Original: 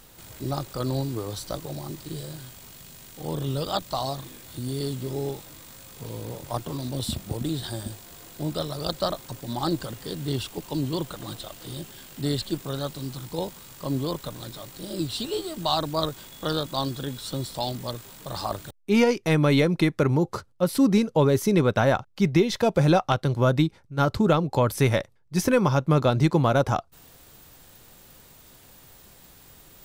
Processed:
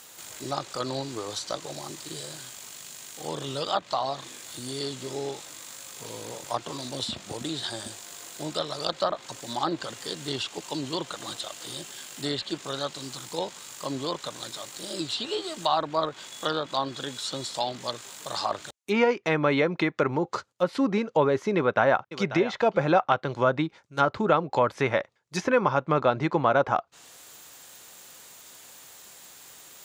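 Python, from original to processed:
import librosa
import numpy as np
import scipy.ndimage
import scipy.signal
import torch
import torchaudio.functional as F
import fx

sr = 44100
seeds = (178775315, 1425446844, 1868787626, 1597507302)

y = fx.echo_throw(x, sr, start_s=21.57, length_s=0.66, ms=540, feedback_pct=10, wet_db=-14.0)
y = fx.highpass(y, sr, hz=840.0, slope=6)
y = fx.peak_eq(y, sr, hz=6900.0, db=7.0, octaves=0.27)
y = fx.env_lowpass_down(y, sr, base_hz=2000.0, full_db=-26.0)
y = F.gain(torch.from_numpy(y), 5.0).numpy()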